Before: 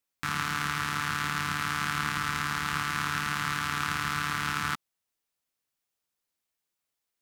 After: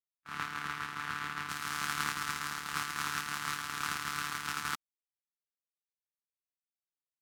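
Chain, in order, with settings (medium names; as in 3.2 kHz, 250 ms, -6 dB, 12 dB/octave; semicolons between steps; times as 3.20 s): gate -28 dBFS, range -59 dB; tone controls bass -7 dB, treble -4 dB, from 1.48 s treble +7 dB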